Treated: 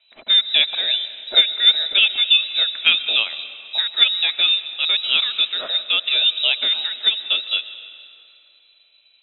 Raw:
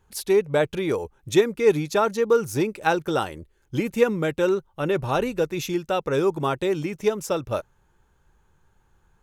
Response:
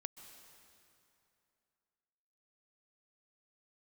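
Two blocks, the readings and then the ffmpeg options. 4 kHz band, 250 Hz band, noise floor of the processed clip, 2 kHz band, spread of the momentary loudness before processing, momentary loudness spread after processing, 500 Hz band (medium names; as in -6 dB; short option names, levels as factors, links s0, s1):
+25.0 dB, under -20 dB, -57 dBFS, +8.5 dB, 7 LU, 8 LU, -19.0 dB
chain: -filter_complex "[0:a]lowpass=f=3400:t=q:w=0.5098,lowpass=f=3400:t=q:w=0.6013,lowpass=f=3400:t=q:w=0.9,lowpass=f=3400:t=q:w=2.563,afreqshift=-4000,equalizer=f=100:t=o:w=0.67:g=-8,equalizer=f=250:t=o:w=0.67:g=8,equalizer=f=630:t=o:w=0.67:g=12,equalizer=f=2500:t=o:w=0.67:g=8,asplit=2[s0][s1];[1:a]atrim=start_sample=2205,highshelf=f=5600:g=8.5[s2];[s1][s2]afir=irnorm=-1:irlink=0,volume=1.88[s3];[s0][s3]amix=inputs=2:normalize=0,volume=0.447"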